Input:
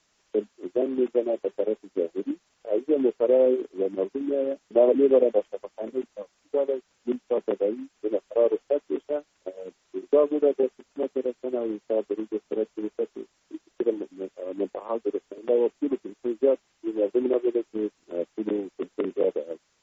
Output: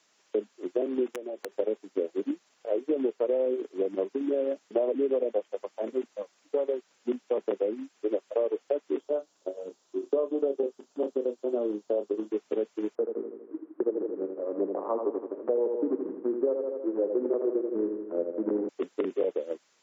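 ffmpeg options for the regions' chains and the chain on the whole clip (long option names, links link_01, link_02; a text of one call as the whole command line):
ffmpeg -i in.wav -filter_complex "[0:a]asettb=1/sr,asplit=3[link_01][link_02][link_03];[link_01]atrim=end=1.064[link_04];[link_02]atrim=start=1.06:end=1.52,asetpts=PTS-STARTPTS,afade=type=in:duration=0.004:curve=qsin,afade=type=out:start_time=0.456:duration=0.004:curve=qsin,acompressor=threshold=-33dB:ratio=12:attack=3.2:release=140:knee=1:detection=peak,aeval=exprs='(mod(23.7*val(0)+1,2)-1)/23.7':channel_layout=same[link_05];[link_03]atrim=start=1.516[link_06];[link_04][link_05]acrossfade=duration=0.004:curve1=hsin:curve2=qsin[link_07];[link_07][link_06]acrossfade=duration=0.004:curve1=qsin:curve2=hsin,asettb=1/sr,asplit=3[link_08][link_09][link_10];[link_08]atrim=end=9.004[link_11];[link_09]atrim=start=9:end=12.31,asetpts=PTS-STARTPTS,afade=type=in:duration=0.004:curve=qsin,afade=type=out:start_time=3.306:duration=0.004:curve=qsin,equalizer=frequency=2100:width_type=o:width=1:gain=-11,asplit=2[link_12][link_13];[link_13]adelay=29,volume=-10.5dB[link_14];[link_12][link_14]amix=inputs=2:normalize=0,atrim=end_sample=145971[link_15];[link_10]atrim=start=12.306[link_16];[link_11][link_15]acrossfade=duration=0.004:curve1=hsin:curve2=qsin[link_17];[link_17][link_16]acrossfade=duration=0.004:curve1=qsin:curve2=hsin,asettb=1/sr,asplit=3[link_18][link_19][link_20];[link_18]atrim=end=12.954[link_21];[link_19]atrim=start=12.95:end=18.69,asetpts=PTS-STARTPTS,afade=type=in:duration=0.004:curve=qsin,afade=type=out:start_time=5.736:duration=0.004:curve=qsin,lowpass=frequency=1400:width=0.5412,lowpass=frequency=1400:width=1.3066,aecho=1:1:81|162|243|324|405|486|567|648:0.447|0.264|0.155|0.0917|0.0541|0.0319|0.0188|0.0111,atrim=end_sample=253134[link_22];[link_20]atrim=start=18.686[link_23];[link_21][link_22]acrossfade=duration=0.004:curve1=hsin:curve2=qsin[link_24];[link_24][link_23]acrossfade=duration=0.004:curve1=qsin:curve2=hsin,highpass=240,acompressor=threshold=-25dB:ratio=6,volume=1.5dB" out.wav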